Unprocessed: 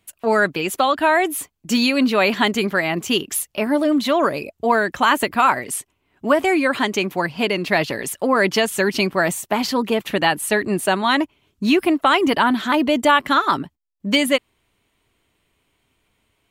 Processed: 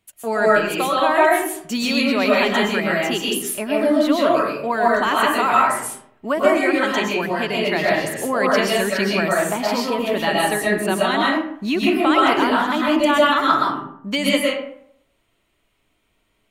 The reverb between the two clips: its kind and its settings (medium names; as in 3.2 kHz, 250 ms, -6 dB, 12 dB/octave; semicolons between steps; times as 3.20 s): algorithmic reverb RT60 0.67 s, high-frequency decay 0.55×, pre-delay 85 ms, DRR -4.5 dB; trim -5.5 dB